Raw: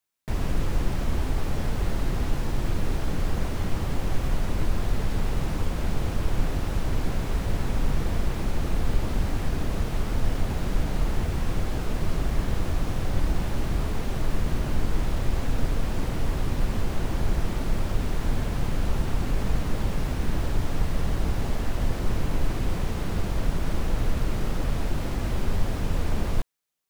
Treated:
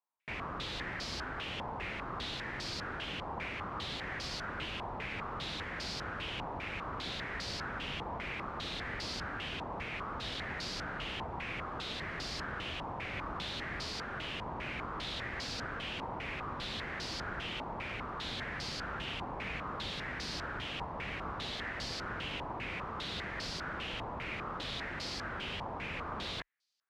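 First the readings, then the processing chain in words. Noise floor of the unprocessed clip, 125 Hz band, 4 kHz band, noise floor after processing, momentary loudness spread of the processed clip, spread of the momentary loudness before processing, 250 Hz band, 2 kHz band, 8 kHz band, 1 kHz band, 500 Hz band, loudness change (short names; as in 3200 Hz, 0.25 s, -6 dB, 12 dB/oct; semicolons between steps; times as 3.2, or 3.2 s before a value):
-30 dBFS, -18.0 dB, +2.5 dB, -42 dBFS, 1 LU, 2 LU, -13.5 dB, +0.5 dB, -9.0 dB, -2.5 dB, -9.5 dB, -9.0 dB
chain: HPF 41 Hz; tilt +3 dB/oct; stepped low-pass 5 Hz 950–4700 Hz; gain -7.5 dB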